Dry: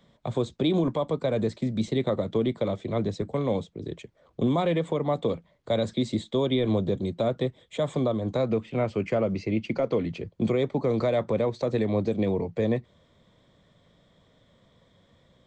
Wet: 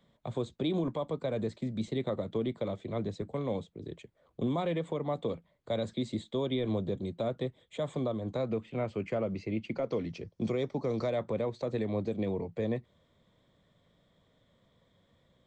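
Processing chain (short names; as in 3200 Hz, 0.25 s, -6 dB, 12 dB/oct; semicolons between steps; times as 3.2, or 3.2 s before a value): bell 5500 Hz -4.5 dB 0.33 oct, from 9.89 s +13 dB, from 11.1 s -3.5 dB; gain -7 dB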